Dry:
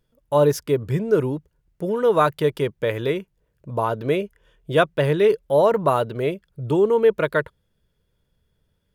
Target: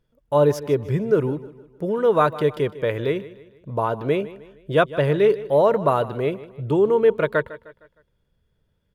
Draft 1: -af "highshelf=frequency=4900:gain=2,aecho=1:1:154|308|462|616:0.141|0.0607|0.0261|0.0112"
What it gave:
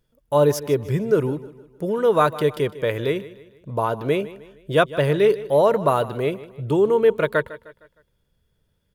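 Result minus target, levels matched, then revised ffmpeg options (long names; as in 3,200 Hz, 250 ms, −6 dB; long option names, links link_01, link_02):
8,000 Hz band +7.5 dB
-af "highshelf=frequency=4900:gain=-8.5,aecho=1:1:154|308|462|616:0.141|0.0607|0.0261|0.0112"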